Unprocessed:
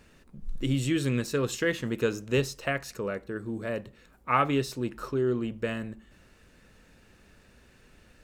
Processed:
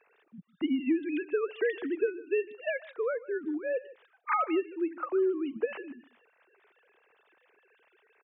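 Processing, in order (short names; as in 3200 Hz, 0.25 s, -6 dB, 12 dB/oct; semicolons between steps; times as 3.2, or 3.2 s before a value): sine-wave speech; compressor 6:1, threshold -27 dBFS, peak gain reduction 10.5 dB; echo 0.152 s -19.5 dB; gain +2.5 dB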